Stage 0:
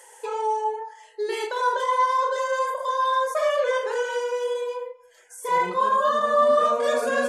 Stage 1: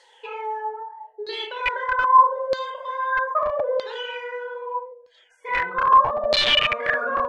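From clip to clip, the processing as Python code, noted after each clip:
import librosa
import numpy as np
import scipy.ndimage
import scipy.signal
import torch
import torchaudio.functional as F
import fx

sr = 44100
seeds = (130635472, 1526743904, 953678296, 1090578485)

y = fx.hum_notches(x, sr, base_hz=60, count=8)
y = (np.mod(10.0 ** (14.5 / 20.0) * y + 1.0, 2.0) - 1.0) / 10.0 ** (14.5 / 20.0)
y = fx.filter_lfo_lowpass(y, sr, shape='saw_down', hz=0.79, low_hz=610.0, high_hz=4300.0, q=8.0)
y = y * librosa.db_to_amplitude(-6.0)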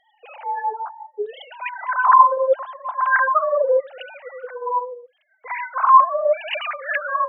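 y = fx.sine_speech(x, sr)
y = y * librosa.db_to_amplitude(2.5)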